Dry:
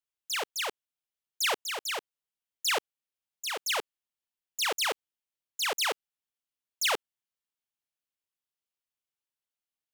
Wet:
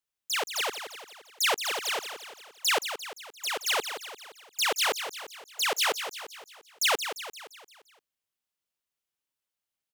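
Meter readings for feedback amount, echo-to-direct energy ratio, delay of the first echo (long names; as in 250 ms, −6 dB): 52%, −8.0 dB, 173 ms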